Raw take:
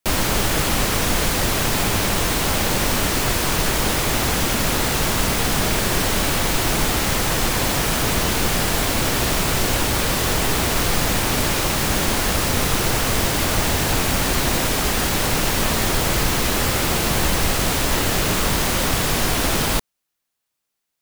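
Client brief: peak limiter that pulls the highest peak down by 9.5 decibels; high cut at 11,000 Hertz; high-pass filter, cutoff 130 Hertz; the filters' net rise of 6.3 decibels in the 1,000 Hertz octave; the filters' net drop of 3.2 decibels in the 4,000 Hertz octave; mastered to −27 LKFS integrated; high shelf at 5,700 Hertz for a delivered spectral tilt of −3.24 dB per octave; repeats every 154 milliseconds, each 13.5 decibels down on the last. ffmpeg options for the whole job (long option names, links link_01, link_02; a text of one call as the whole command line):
ffmpeg -i in.wav -af "highpass=130,lowpass=11000,equalizer=frequency=1000:width_type=o:gain=8,equalizer=frequency=4000:width_type=o:gain=-6.5,highshelf=frequency=5700:gain=4.5,alimiter=limit=-15.5dB:level=0:latency=1,aecho=1:1:154|308:0.211|0.0444,volume=-3.5dB" out.wav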